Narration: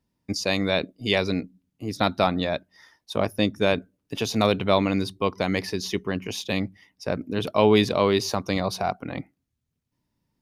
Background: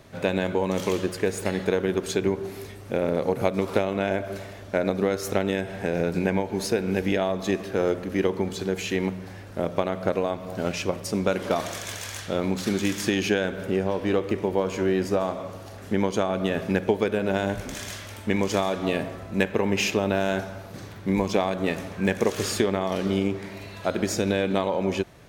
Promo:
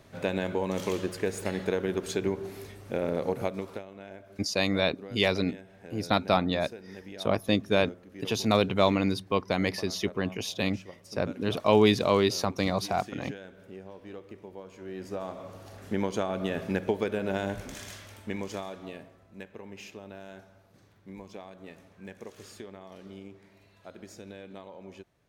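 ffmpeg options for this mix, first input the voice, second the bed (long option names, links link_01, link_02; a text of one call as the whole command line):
ffmpeg -i stem1.wav -i stem2.wav -filter_complex "[0:a]adelay=4100,volume=-2.5dB[link_01];[1:a]volume=9.5dB,afade=type=out:start_time=3.31:duration=0.53:silence=0.177828,afade=type=in:start_time=14.81:duration=0.94:silence=0.188365,afade=type=out:start_time=17.44:duration=1.69:silence=0.16788[link_02];[link_01][link_02]amix=inputs=2:normalize=0" out.wav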